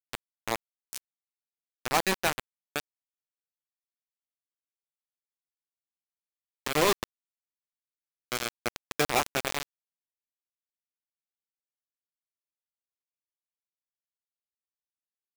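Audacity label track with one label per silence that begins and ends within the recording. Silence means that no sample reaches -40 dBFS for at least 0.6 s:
0.980000	1.860000	silence
2.800000	6.660000	silence
7.040000	8.320000	silence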